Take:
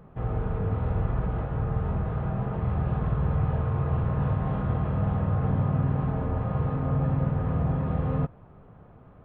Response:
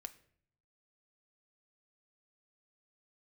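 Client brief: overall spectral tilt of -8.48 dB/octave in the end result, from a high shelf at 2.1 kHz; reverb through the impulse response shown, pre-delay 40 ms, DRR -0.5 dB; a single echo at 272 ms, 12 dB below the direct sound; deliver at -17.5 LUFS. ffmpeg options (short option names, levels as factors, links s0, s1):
-filter_complex "[0:a]highshelf=f=2100:g=-4.5,aecho=1:1:272:0.251,asplit=2[s0][s1];[1:a]atrim=start_sample=2205,adelay=40[s2];[s1][s2]afir=irnorm=-1:irlink=0,volume=1.88[s3];[s0][s3]amix=inputs=2:normalize=0,volume=2.51"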